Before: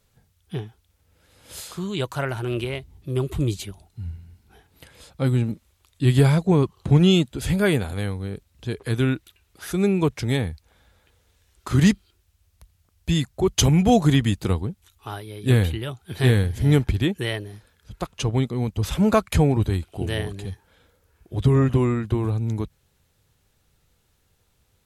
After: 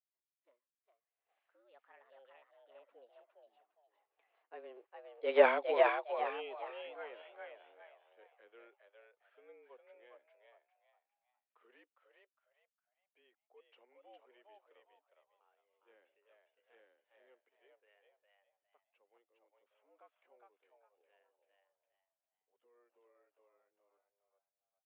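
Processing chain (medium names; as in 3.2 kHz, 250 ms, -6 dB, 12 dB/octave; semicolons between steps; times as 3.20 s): Doppler pass-by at 5.44 s, 45 m/s, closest 3.4 m; mistuned SSB +120 Hz 320–2700 Hz; frequency-shifting echo 408 ms, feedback 31%, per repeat +86 Hz, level -3 dB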